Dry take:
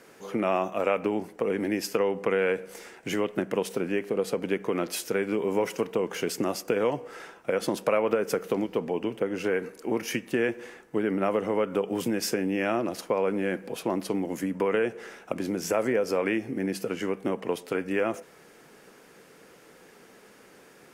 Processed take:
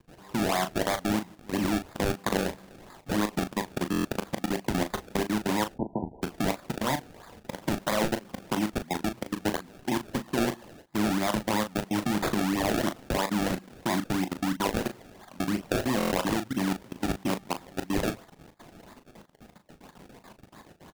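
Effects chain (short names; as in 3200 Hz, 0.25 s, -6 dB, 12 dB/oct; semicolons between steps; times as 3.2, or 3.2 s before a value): HPF 70 Hz 24 dB/oct; comb 1.1 ms, depth 90%; in parallel at +2 dB: limiter -19.5 dBFS, peak gain reduction 8 dB; on the sum: level quantiser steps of 23 dB; decimation with a swept rate 30×, swing 100% 3 Hz; 5.74–6.22 brick-wall FIR low-pass 1000 Hz; on a send: early reflections 23 ms -17.5 dB, 38 ms -9 dB; on the sum: stuck buffer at 3.91/15.98, samples 1024, times 5; gain -3.5 dB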